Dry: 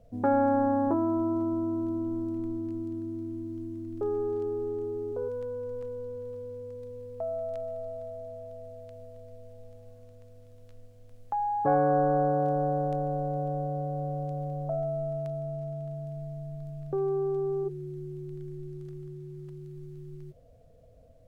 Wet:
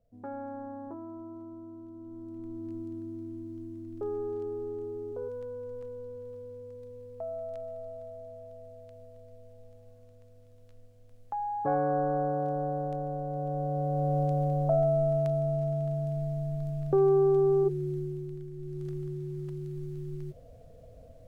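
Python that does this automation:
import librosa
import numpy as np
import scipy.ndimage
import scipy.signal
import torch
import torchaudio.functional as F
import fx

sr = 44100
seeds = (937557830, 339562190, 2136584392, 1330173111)

y = fx.gain(x, sr, db=fx.line((1.92, -15.5), (2.72, -4.0), (13.26, -4.0), (14.18, 6.0), (17.94, 6.0), (18.51, -2.5), (18.87, 5.5)))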